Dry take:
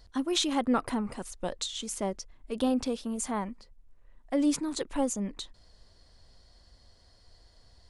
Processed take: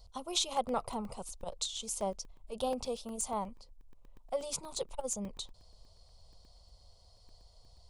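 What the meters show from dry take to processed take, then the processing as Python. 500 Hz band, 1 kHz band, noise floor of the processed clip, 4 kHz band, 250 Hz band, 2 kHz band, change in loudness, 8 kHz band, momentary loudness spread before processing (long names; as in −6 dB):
−3.5 dB, −2.5 dB, −61 dBFS, −3.5 dB, −14.0 dB, −11.0 dB, −6.0 dB, −1.0 dB, 13 LU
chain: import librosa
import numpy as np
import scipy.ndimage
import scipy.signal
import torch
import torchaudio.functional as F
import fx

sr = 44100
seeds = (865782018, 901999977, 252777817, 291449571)

y = fx.fixed_phaser(x, sr, hz=710.0, stages=4)
y = fx.buffer_crackle(y, sr, first_s=0.57, period_s=0.12, block=64, kind='zero')
y = fx.transformer_sat(y, sr, knee_hz=190.0)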